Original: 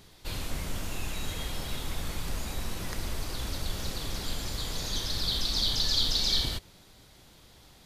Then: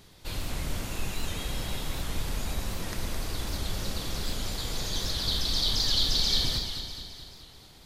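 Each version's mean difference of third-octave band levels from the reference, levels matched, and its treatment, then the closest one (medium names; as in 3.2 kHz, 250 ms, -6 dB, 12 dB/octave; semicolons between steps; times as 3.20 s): 2.0 dB: echo whose repeats swap between lows and highs 107 ms, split 800 Hz, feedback 75%, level -4 dB; warped record 78 rpm, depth 100 cents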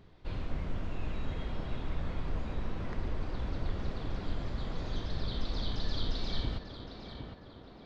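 10.5 dB: tape spacing loss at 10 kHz 39 dB; band-stop 850 Hz, Q 25; tape echo 761 ms, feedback 63%, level -4 dB, low-pass 2 kHz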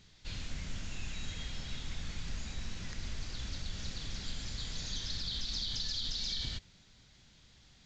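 6.5 dB: high-order bell 610 Hz -8 dB 2.3 oct; peak limiter -21.5 dBFS, peak gain reduction 8 dB; trim -5.5 dB; A-law 128 kbps 16 kHz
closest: first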